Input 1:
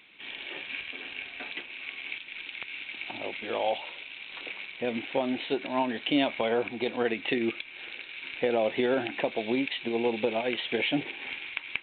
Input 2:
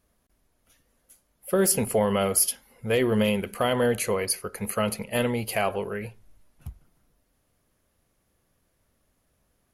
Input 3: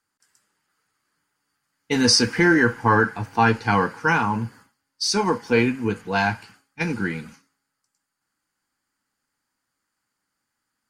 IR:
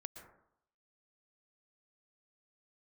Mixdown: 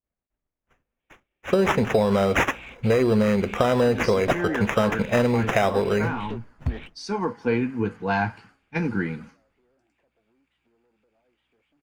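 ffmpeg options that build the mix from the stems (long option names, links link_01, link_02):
-filter_complex "[0:a]acompressor=threshold=-35dB:ratio=6,aeval=exprs='val(0)+0.00178*(sin(2*PI*60*n/s)+sin(2*PI*2*60*n/s)/2+sin(2*PI*3*60*n/s)/3+sin(2*PI*4*60*n/s)/4+sin(2*PI*5*60*n/s)/5)':channel_layout=same,asoftclip=type=tanh:threshold=-38dB,adelay=800,volume=2.5dB[link_01];[1:a]agate=range=-33dB:threshold=-53dB:ratio=3:detection=peak,acrusher=samples=10:mix=1:aa=0.000001,acontrast=82,volume=0dB,asplit=2[link_02][link_03];[2:a]adelay=1950,volume=-13dB[link_04];[link_03]apad=whole_len=556691[link_05];[link_01][link_05]sidechaingate=range=-42dB:threshold=-45dB:ratio=16:detection=peak[link_06];[link_06][link_02][link_04]amix=inputs=3:normalize=0,dynaudnorm=framelen=550:gausssize=5:maxgain=14dB,lowpass=frequency=1500:poles=1,acompressor=threshold=-17dB:ratio=6"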